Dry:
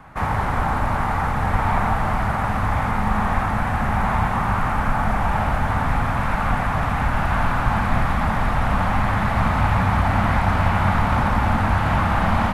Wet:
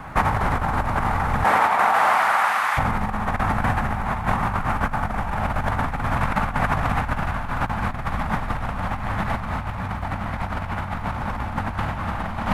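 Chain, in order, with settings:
0:01.43–0:02.77: high-pass filter 350 Hz → 1,400 Hz 12 dB per octave
compressor whose output falls as the input rises −24 dBFS, ratio −0.5
surface crackle 150 per second −51 dBFS
level +2.5 dB

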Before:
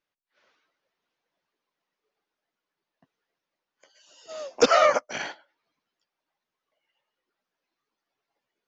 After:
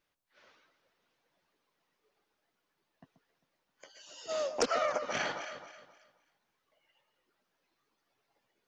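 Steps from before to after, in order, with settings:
low-shelf EQ 120 Hz +7.5 dB
delay that swaps between a low-pass and a high-pass 133 ms, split 1,300 Hz, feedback 54%, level −11 dB
downward compressor 6 to 1, threshold −33 dBFS, peak gain reduction 19 dB
highs frequency-modulated by the lows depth 0.17 ms
level +4 dB

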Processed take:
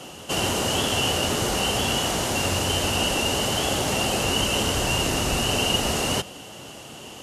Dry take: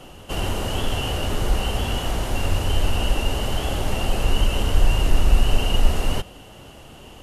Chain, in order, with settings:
high-pass filter 130 Hz 12 dB per octave
parametric band 6,500 Hz +8 dB 1.5 octaves
level +3 dB

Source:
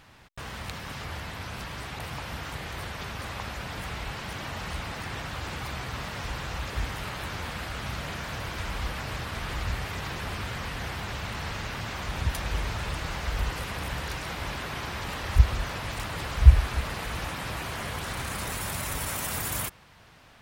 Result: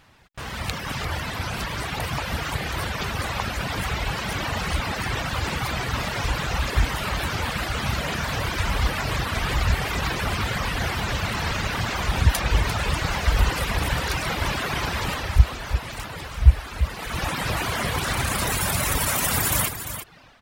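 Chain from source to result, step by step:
reverb reduction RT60 1.2 s
automatic gain control gain up to 12 dB
on a send: single-tap delay 346 ms −10 dB
on the sum: level −1 dB

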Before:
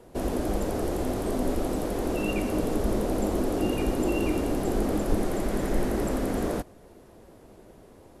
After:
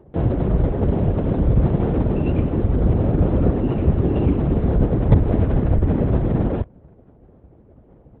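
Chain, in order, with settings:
Bessel low-pass filter 2,300 Hz
in parallel at −4 dB: log-companded quantiser 2 bits
on the sum: spectral tilt −3.5 dB per octave
linear-prediction vocoder at 8 kHz whisper
high-pass filter 42 Hz
level −6 dB

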